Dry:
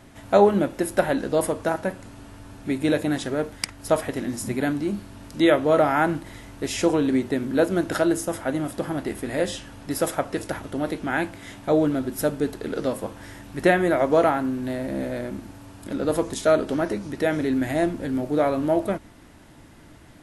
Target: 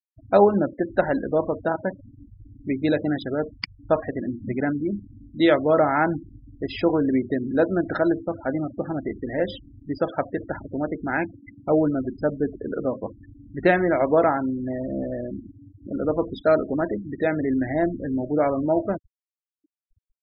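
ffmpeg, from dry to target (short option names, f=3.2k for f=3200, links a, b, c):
-af "aresample=11025,aresample=44100,afftfilt=real='re*gte(hypot(re,im),0.0447)':imag='im*gte(hypot(re,im),0.0447)':win_size=1024:overlap=0.75"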